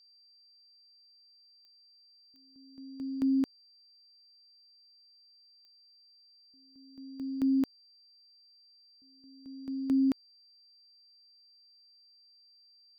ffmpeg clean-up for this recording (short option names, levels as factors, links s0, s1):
-af "adeclick=t=4,bandreject=f=4700:w=30"